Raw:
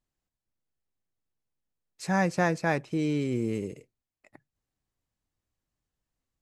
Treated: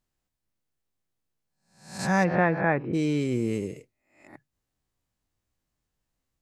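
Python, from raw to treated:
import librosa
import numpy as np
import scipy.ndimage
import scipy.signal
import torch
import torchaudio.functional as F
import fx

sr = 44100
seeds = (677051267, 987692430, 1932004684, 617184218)

y = fx.spec_swells(x, sr, rise_s=0.52)
y = fx.lowpass(y, sr, hz=fx.line((2.23, 3100.0), (2.93, 1900.0)), slope=24, at=(2.23, 2.93), fade=0.02)
y = y * 10.0 ** (2.0 / 20.0)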